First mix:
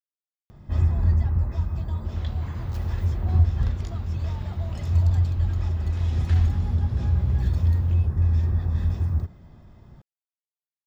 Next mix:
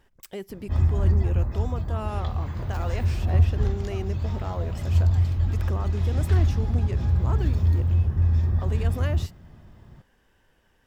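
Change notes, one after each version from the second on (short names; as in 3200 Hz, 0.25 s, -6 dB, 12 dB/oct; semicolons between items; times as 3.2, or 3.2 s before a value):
speech: unmuted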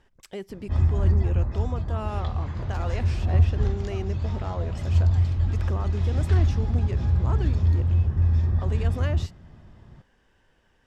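master: add LPF 8000 Hz 12 dB/oct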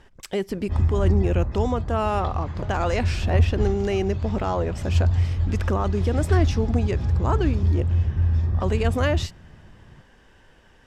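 speech +10.0 dB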